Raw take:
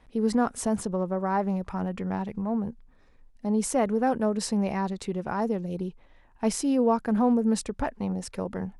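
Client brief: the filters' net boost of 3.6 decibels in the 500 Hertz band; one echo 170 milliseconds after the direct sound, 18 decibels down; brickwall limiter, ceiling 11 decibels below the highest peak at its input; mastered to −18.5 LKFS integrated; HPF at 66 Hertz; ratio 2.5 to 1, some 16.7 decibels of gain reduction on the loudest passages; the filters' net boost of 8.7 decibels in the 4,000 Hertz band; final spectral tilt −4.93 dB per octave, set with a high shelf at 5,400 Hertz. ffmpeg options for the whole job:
ffmpeg -i in.wav -af "highpass=66,equalizer=frequency=500:width_type=o:gain=4,equalizer=frequency=4000:width_type=o:gain=7,highshelf=frequency=5400:gain=8.5,acompressor=threshold=-43dB:ratio=2.5,alimiter=level_in=8dB:limit=-24dB:level=0:latency=1,volume=-8dB,aecho=1:1:170:0.126,volume=23dB" out.wav

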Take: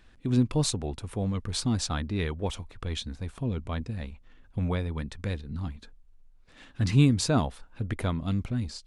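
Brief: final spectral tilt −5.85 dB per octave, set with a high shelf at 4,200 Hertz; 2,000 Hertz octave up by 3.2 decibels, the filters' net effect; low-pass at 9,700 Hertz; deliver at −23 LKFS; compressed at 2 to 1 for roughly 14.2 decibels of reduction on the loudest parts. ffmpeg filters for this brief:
ffmpeg -i in.wav -af "lowpass=9700,equalizer=frequency=2000:width_type=o:gain=5.5,highshelf=frequency=4200:gain=-6,acompressor=threshold=-42dB:ratio=2,volume=17dB" out.wav

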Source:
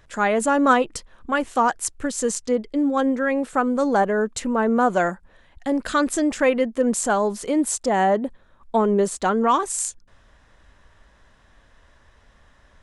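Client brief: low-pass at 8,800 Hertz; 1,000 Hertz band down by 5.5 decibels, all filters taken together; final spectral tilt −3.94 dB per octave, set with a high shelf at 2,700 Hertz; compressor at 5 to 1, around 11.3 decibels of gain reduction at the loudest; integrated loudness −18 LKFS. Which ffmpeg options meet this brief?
ffmpeg -i in.wav -af "lowpass=8800,equalizer=frequency=1000:width_type=o:gain=-7,highshelf=frequency=2700:gain=-3.5,acompressor=threshold=-29dB:ratio=5,volume=14.5dB" out.wav

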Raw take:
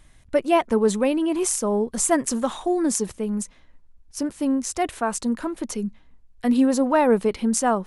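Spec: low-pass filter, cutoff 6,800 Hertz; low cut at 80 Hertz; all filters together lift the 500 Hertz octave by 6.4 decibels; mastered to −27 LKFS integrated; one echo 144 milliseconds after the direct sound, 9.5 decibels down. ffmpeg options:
ffmpeg -i in.wav -af "highpass=80,lowpass=6800,equalizer=frequency=500:width_type=o:gain=8,aecho=1:1:144:0.335,volume=-8.5dB" out.wav

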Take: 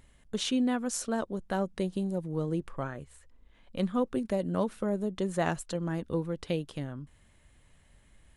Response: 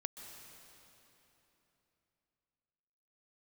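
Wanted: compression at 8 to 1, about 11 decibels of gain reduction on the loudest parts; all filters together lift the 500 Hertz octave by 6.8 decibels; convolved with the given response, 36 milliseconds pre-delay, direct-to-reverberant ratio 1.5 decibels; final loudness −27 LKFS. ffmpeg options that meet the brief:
-filter_complex "[0:a]equalizer=frequency=500:width_type=o:gain=8,acompressor=threshold=-30dB:ratio=8,asplit=2[link_01][link_02];[1:a]atrim=start_sample=2205,adelay=36[link_03];[link_02][link_03]afir=irnorm=-1:irlink=0,volume=0.5dB[link_04];[link_01][link_04]amix=inputs=2:normalize=0,volume=6dB"

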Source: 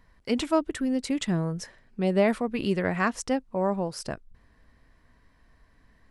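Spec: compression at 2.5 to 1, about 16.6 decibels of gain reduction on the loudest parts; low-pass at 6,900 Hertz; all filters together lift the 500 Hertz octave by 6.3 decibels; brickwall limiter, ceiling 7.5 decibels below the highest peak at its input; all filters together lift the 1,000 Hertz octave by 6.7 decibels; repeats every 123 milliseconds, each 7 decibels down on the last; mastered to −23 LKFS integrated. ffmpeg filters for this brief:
ffmpeg -i in.wav -af "lowpass=6900,equalizer=frequency=500:width_type=o:gain=6,equalizer=frequency=1000:width_type=o:gain=6.5,acompressor=threshold=-38dB:ratio=2.5,alimiter=level_in=4.5dB:limit=-24dB:level=0:latency=1,volume=-4.5dB,aecho=1:1:123|246|369|492|615:0.447|0.201|0.0905|0.0407|0.0183,volume=15.5dB" out.wav

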